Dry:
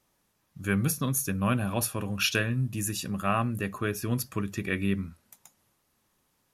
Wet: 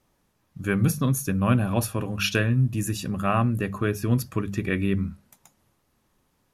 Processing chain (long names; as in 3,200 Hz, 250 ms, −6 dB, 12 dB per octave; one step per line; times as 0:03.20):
spectral tilt −1.5 dB per octave
mains-hum notches 50/100/150/200 Hz
level +3 dB